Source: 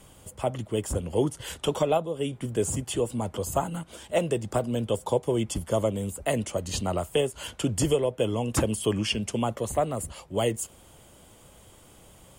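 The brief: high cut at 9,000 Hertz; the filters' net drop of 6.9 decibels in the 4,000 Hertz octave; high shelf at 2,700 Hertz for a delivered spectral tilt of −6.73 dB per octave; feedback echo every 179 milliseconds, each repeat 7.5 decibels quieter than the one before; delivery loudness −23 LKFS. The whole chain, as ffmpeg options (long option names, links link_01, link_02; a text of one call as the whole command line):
ffmpeg -i in.wav -af "lowpass=9000,highshelf=frequency=2700:gain=-5,equalizer=frequency=4000:width_type=o:gain=-6,aecho=1:1:179|358|537|716|895:0.422|0.177|0.0744|0.0312|0.0131,volume=5dB" out.wav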